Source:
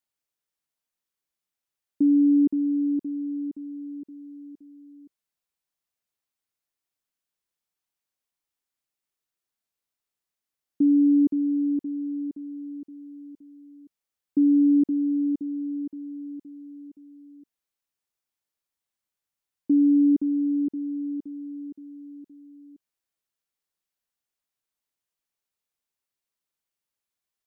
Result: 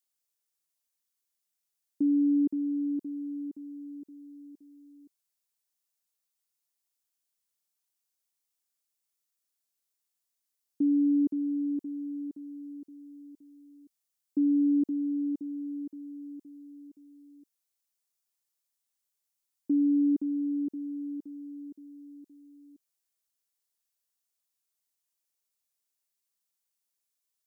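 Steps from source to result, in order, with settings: tone controls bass -4 dB, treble +10 dB; trim -4.5 dB

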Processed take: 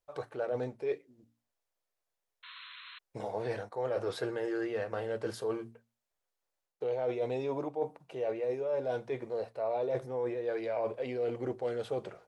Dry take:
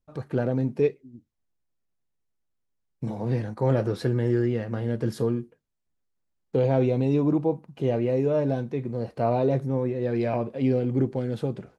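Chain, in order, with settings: resonant low shelf 370 Hz -14 dB, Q 1.5; hum notches 60/120/180/240/300 Hz; reverse; compression 6:1, threshold -32 dBFS, peak gain reduction 13 dB; reverse; painted sound noise, 2.33–2.87 s, 1–4.4 kHz -51 dBFS; speed mistake 25 fps video run at 24 fps; trim +1.5 dB

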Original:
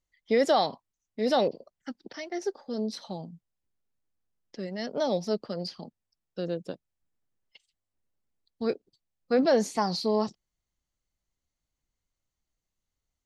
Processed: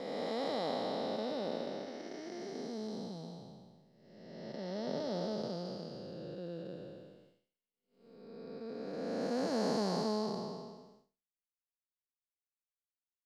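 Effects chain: spectral blur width 781 ms; expander -60 dBFS

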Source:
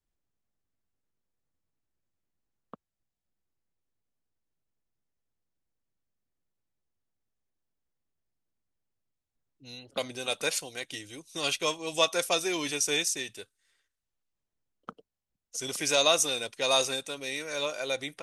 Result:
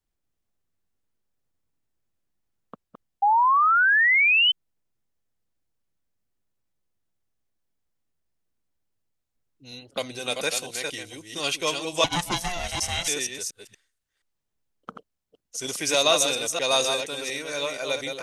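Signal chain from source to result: chunks repeated in reverse 237 ms, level -5 dB; 3.22–4.52 s: painted sound rise 790–3100 Hz -21 dBFS; 12.04–13.08 s: ring modulator 350 Hz; trim +2.5 dB

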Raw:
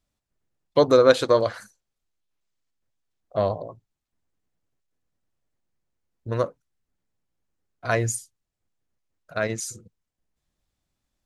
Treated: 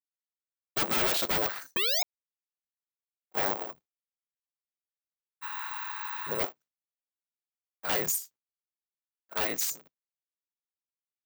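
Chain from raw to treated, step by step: cycle switcher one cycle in 3, inverted; expander -44 dBFS; frequency weighting A; spectral replace 5.45–6.30 s, 780–9400 Hz after; dynamic bell 7.6 kHz, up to +4 dB, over -40 dBFS, Q 0.81; painted sound rise, 1.76–2.03 s, 340–780 Hz -10 dBFS; wavefolder -22.5 dBFS; careless resampling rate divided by 2×, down filtered, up zero stuff; trim -2 dB

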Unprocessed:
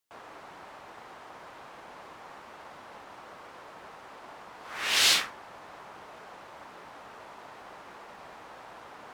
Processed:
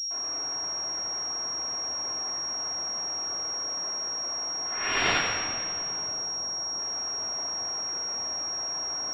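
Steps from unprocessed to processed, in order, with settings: CVSD coder 64 kbps; 3.54–4.01 s: steep high-pass 150 Hz 72 dB/octave; 6.11–6.79 s: distance through air 440 m; multi-head delay 89 ms, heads first and second, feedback 66%, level -20 dB; simulated room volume 3500 m³, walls mixed, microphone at 3.2 m; class-D stage that switches slowly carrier 5.6 kHz

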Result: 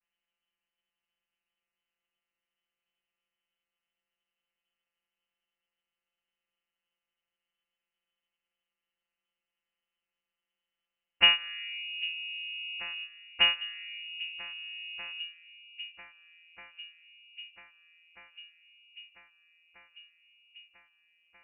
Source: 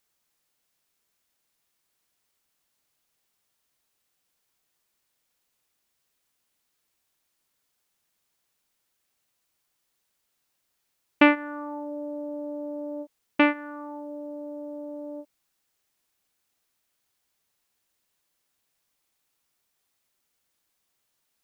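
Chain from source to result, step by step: vocoder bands 32, saw 167 Hz; harmony voices +5 st -15 dB; on a send: echo whose repeats swap between lows and highs 794 ms, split 820 Hz, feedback 81%, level -13.5 dB; on the sum: frequency inversion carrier 3.2 kHz; trim -4 dB

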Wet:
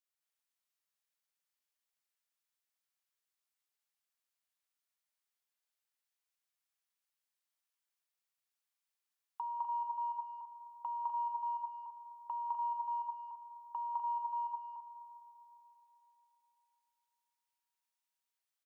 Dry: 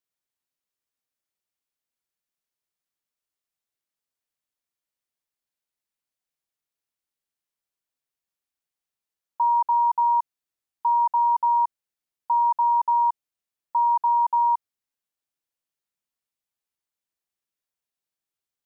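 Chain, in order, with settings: high-pass 800 Hz 12 dB/octave; gate -20 dBFS, range -15 dB; compression 6:1, threshold -52 dBFS, peak gain reduction 17 dB; loudspeakers at several distances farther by 71 m -1 dB, 86 m -7 dB; on a send at -12 dB: reverberation RT60 3.6 s, pre-delay 60 ms; on the sum: trim +11 dB

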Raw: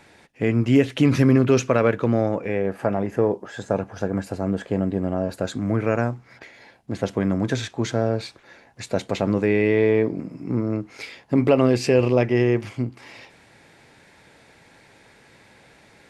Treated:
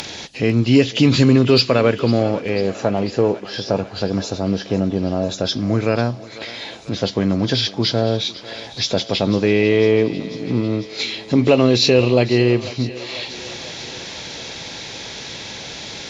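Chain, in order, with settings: knee-point frequency compression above 2.8 kHz 1.5:1; upward compressor, threshold -27 dBFS; resonant high shelf 2.7 kHz +11 dB, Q 1.5; on a send: thinning echo 497 ms, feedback 77%, high-pass 350 Hz, level -16.5 dB; on the sum: Chebyshev shaper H 5 -36 dB, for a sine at -4.5 dBFS; trim +3.5 dB

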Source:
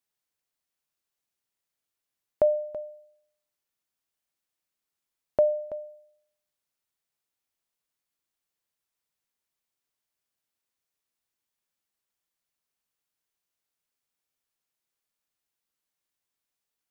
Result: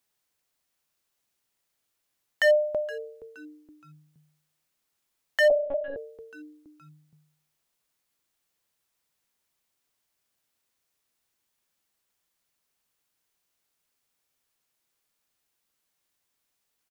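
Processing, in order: wavefolder -21.5 dBFS; frequency-shifting echo 470 ms, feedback 40%, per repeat -150 Hz, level -18 dB; 5.50–5.97 s: monotone LPC vocoder at 8 kHz 280 Hz; trim +7.5 dB

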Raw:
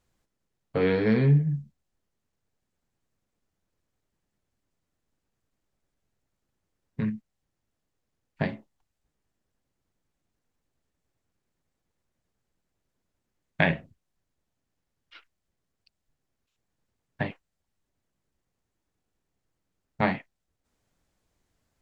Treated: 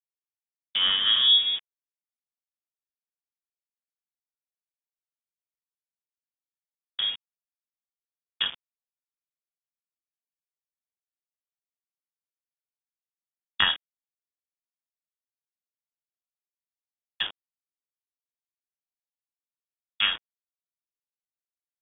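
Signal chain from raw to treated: small samples zeroed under -33 dBFS; frequency inversion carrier 3.5 kHz; tape noise reduction on one side only encoder only

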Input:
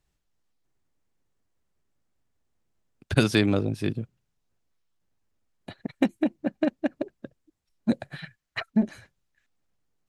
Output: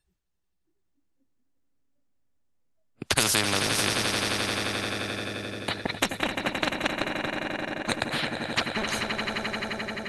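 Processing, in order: spectral noise reduction 25 dB; on a send: echo with a slow build-up 87 ms, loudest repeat 5, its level -16.5 dB; on the sum: spectrum-flattening compressor 4:1

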